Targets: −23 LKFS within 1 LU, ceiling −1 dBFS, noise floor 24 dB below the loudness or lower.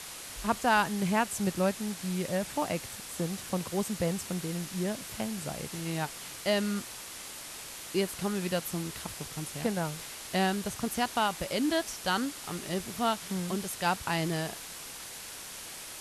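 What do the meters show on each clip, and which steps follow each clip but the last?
background noise floor −44 dBFS; target noise floor −57 dBFS; integrated loudness −32.5 LKFS; sample peak −14.0 dBFS; target loudness −23.0 LKFS
→ broadband denoise 13 dB, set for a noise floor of −44 dBFS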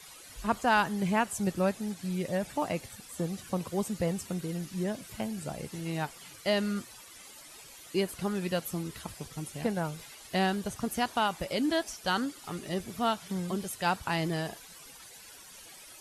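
background noise floor −51 dBFS; target noise floor −57 dBFS
→ broadband denoise 6 dB, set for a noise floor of −51 dBFS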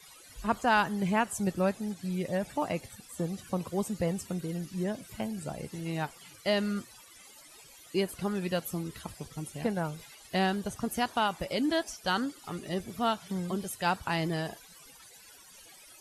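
background noise floor −54 dBFS; target noise floor −57 dBFS
→ broadband denoise 6 dB, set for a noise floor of −54 dBFS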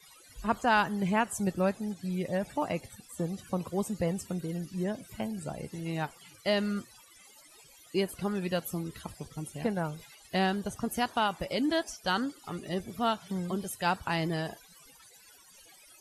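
background noise floor −57 dBFS; integrated loudness −32.5 LKFS; sample peak −14.0 dBFS; target loudness −23.0 LKFS
→ level +9.5 dB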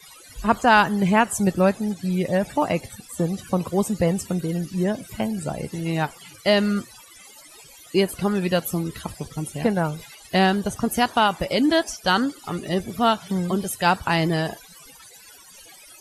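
integrated loudness −23.0 LKFS; sample peak −4.5 dBFS; background noise floor −47 dBFS

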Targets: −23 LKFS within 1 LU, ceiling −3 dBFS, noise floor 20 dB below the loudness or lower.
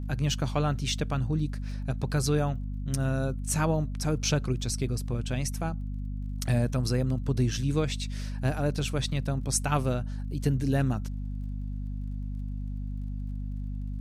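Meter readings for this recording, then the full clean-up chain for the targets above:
crackle rate 33 per second; mains hum 50 Hz; hum harmonics up to 250 Hz; level of the hum −31 dBFS; integrated loudness −30.0 LKFS; sample peak −12.0 dBFS; target loudness −23.0 LKFS
→ click removal
mains-hum notches 50/100/150/200/250 Hz
level +7 dB

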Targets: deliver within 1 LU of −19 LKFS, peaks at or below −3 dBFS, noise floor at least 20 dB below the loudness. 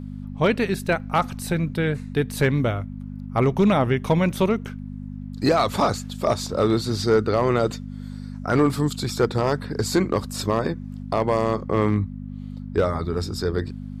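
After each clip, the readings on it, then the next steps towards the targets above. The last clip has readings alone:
share of clipped samples 0.4%; peaks flattened at −11.0 dBFS; mains hum 50 Hz; hum harmonics up to 250 Hz; level of the hum −31 dBFS; integrated loudness −23.0 LKFS; sample peak −11.0 dBFS; target loudness −19.0 LKFS
→ clipped peaks rebuilt −11 dBFS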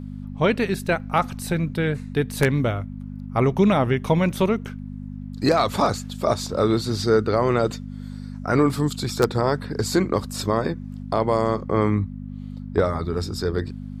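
share of clipped samples 0.0%; mains hum 50 Hz; hum harmonics up to 250 Hz; level of the hum −31 dBFS
→ hum removal 50 Hz, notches 5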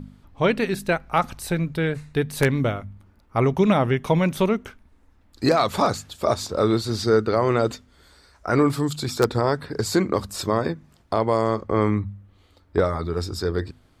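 mains hum none found; integrated loudness −23.0 LKFS; sample peak −2.5 dBFS; target loudness −19.0 LKFS
→ level +4 dB
brickwall limiter −3 dBFS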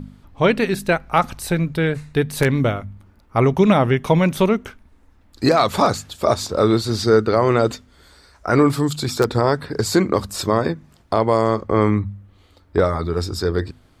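integrated loudness −19.0 LKFS; sample peak −3.0 dBFS; background noise floor −53 dBFS

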